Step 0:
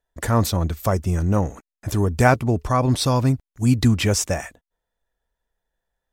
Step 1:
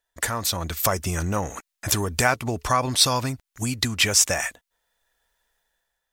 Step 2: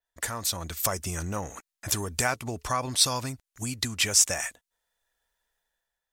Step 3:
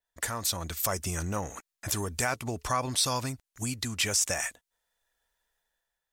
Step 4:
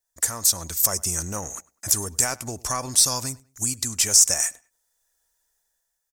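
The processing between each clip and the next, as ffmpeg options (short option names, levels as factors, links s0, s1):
-af "acompressor=threshold=0.0794:ratio=6,tiltshelf=f=730:g=-8,dynaudnorm=f=150:g=7:m=2.66,volume=0.841"
-af "adynamicequalizer=threshold=0.0178:dfrequency=8400:dqfactor=0.7:tfrequency=8400:tqfactor=0.7:attack=5:release=100:ratio=0.375:range=3:mode=boostabove:tftype=bell,volume=0.447"
-af "alimiter=limit=0.178:level=0:latency=1:release=49"
-filter_complex "[0:a]aeval=exprs='0.188*(cos(1*acos(clip(val(0)/0.188,-1,1)))-cos(1*PI/2))+0.0211*(cos(2*acos(clip(val(0)/0.188,-1,1)))-cos(2*PI/2))':c=same,highshelf=f=4500:t=q:w=1.5:g=10,asplit=2[s0][s1];[s1]adelay=100,lowpass=f=3800:p=1,volume=0.0794,asplit=2[s2][s3];[s3]adelay=100,lowpass=f=3800:p=1,volume=0.3[s4];[s0][s2][s4]amix=inputs=3:normalize=0"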